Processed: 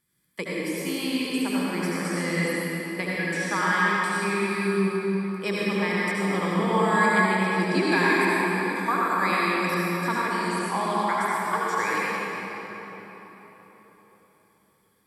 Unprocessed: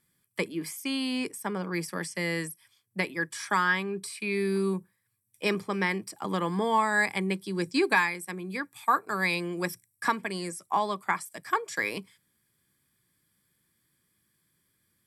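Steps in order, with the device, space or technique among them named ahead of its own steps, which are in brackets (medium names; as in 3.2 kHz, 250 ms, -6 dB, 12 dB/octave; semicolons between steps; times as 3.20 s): cathedral (reverberation RT60 4.3 s, pre-delay 67 ms, DRR -7 dB); trim -3 dB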